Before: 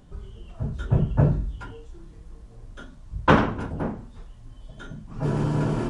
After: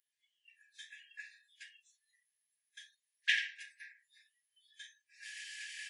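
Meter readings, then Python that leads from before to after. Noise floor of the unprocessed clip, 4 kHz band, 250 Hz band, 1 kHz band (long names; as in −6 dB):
−47 dBFS, 0.0 dB, below −40 dB, below −40 dB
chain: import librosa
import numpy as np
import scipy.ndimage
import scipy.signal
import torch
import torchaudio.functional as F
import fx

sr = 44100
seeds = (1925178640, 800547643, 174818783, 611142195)

y = fx.noise_reduce_blind(x, sr, reduce_db=22)
y = fx.brickwall_highpass(y, sr, low_hz=1600.0)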